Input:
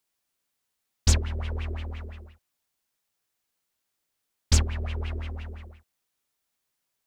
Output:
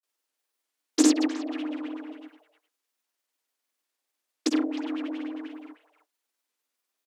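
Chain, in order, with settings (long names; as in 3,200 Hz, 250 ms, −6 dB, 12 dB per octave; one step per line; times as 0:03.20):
granular cloud
far-end echo of a speakerphone 310 ms, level −11 dB
frequency shifter +230 Hz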